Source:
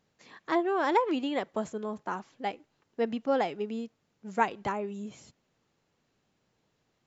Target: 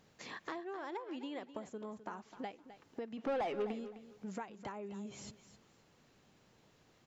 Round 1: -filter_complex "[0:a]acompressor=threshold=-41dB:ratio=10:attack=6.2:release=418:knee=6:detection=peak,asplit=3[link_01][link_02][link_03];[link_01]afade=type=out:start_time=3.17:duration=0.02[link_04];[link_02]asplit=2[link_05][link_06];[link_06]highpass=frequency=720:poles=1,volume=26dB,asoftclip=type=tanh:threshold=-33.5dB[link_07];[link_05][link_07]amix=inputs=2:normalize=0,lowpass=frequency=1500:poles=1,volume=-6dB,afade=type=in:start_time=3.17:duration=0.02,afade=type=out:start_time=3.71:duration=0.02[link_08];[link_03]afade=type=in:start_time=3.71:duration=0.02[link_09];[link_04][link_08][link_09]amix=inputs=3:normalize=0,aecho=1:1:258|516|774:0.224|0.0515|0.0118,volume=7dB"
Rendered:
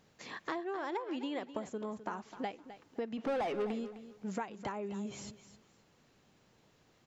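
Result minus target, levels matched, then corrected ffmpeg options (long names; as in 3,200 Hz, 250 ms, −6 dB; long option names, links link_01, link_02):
downward compressor: peak gain reduction −5.5 dB
-filter_complex "[0:a]acompressor=threshold=-47dB:ratio=10:attack=6.2:release=418:knee=6:detection=peak,asplit=3[link_01][link_02][link_03];[link_01]afade=type=out:start_time=3.17:duration=0.02[link_04];[link_02]asplit=2[link_05][link_06];[link_06]highpass=frequency=720:poles=1,volume=26dB,asoftclip=type=tanh:threshold=-33.5dB[link_07];[link_05][link_07]amix=inputs=2:normalize=0,lowpass=frequency=1500:poles=1,volume=-6dB,afade=type=in:start_time=3.17:duration=0.02,afade=type=out:start_time=3.71:duration=0.02[link_08];[link_03]afade=type=in:start_time=3.71:duration=0.02[link_09];[link_04][link_08][link_09]amix=inputs=3:normalize=0,aecho=1:1:258|516|774:0.224|0.0515|0.0118,volume=7dB"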